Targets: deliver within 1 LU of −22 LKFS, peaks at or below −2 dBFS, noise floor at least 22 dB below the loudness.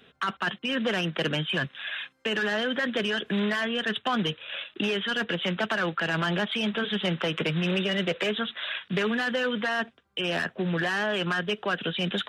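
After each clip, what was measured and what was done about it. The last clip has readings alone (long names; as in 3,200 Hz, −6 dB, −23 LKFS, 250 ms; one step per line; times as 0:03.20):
integrated loudness −28.0 LKFS; sample peak −15.5 dBFS; target loudness −22.0 LKFS
→ level +6 dB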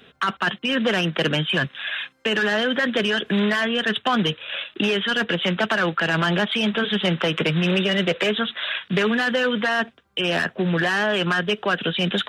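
integrated loudness −22.0 LKFS; sample peak −9.5 dBFS; background noise floor −54 dBFS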